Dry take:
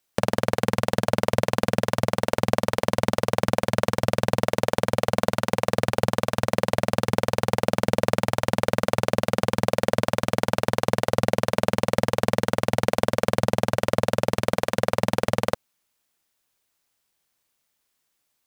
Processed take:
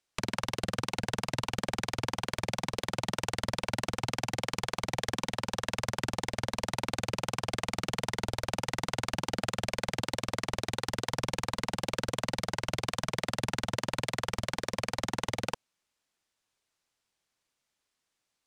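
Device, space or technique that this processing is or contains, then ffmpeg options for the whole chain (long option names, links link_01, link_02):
overflowing digital effects unit: -af "aeval=exprs='(mod(5.62*val(0)+1,2)-1)/5.62':channel_layout=same,lowpass=8000,volume=-4.5dB"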